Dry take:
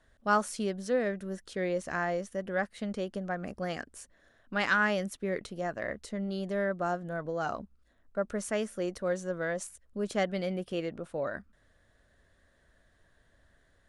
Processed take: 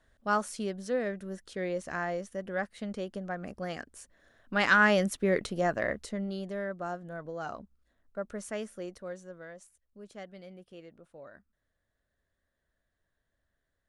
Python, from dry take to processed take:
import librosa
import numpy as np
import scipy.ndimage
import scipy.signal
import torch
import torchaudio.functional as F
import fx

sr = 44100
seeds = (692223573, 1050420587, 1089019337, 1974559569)

y = fx.gain(x, sr, db=fx.line((3.96, -2.0), (5.02, 6.0), (5.74, 6.0), (6.61, -5.0), (8.68, -5.0), (9.64, -15.5)))